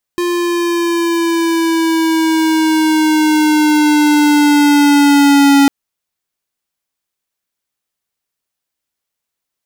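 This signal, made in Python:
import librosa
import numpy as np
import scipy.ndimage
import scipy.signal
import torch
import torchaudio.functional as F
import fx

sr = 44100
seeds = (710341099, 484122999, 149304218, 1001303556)

y = fx.riser_tone(sr, length_s=5.5, level_db=-7.5, wave='square', hz=351.0, rise_st=-4.0, swell_db=8.0)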